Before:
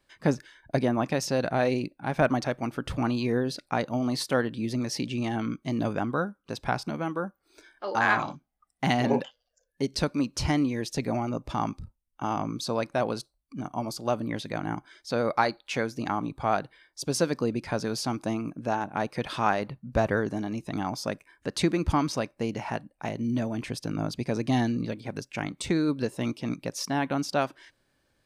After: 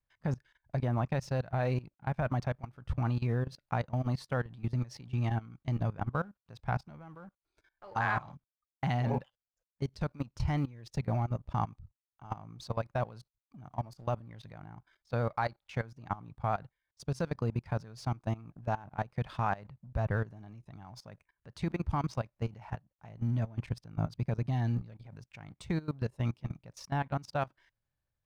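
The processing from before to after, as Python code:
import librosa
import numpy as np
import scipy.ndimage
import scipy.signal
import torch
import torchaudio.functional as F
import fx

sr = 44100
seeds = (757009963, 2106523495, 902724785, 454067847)

y = fx.law_mismatch(x, sr, coded='A')
y = fx.curve_eq(y, sr, hz=(120.0, 290.0, 830.0, 1900.0, 9900.0), db=(0, -18, -10, -13, -22))
y = fx.level_steps(y, sr, step_db=19)
y = F.gain(torch.from_numpy(y), 8.5).numpy()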